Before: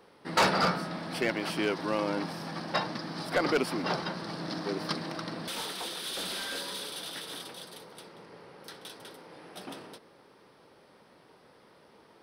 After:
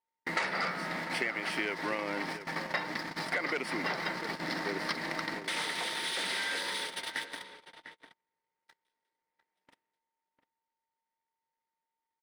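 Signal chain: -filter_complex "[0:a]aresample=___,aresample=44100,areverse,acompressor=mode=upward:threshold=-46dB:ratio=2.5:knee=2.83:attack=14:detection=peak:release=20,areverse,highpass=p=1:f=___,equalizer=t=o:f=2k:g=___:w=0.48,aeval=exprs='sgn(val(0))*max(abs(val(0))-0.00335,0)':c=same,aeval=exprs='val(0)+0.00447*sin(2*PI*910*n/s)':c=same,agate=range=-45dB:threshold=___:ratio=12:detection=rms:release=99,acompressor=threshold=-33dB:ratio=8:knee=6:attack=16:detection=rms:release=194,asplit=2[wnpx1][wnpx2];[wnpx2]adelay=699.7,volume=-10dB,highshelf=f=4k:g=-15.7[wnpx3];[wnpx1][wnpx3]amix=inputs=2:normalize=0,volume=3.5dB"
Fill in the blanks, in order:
22050, 230, 14, -37dB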